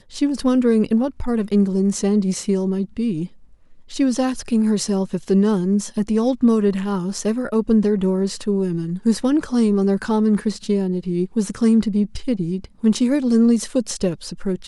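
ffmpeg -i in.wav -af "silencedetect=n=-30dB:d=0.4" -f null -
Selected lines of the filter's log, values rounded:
silence_start: 3.27
silence_end: 3.92 | silence_duration: 0.65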